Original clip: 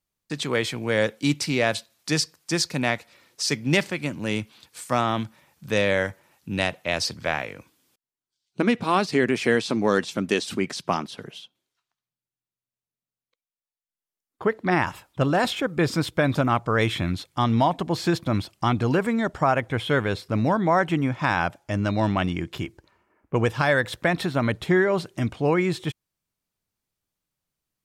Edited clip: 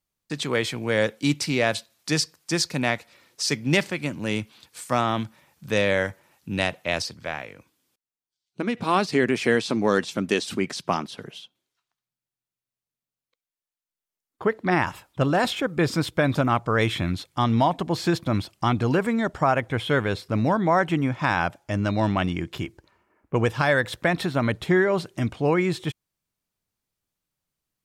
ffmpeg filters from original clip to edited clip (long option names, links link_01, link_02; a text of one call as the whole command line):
ffmpeg -i in.wav -filter_complex "[0:a]asplit=3[link_01][link_02][link_03];[link_01]atrim=end=7.022[link_04];[link_02]atrim=start=7.018:end=8.772,asetpts=PTS-STARTPTS,volume=-5.5dB[link_05];[link_03]atrim=start=8.768[link_06];[link_04][link_05]acrossfade=duration=0.004:curve1=hsin:curve2=hsin[link_07];[link_07][link_06]acrossfade=duration=0.004:curve1=hsin:curve2=hsin" out.wav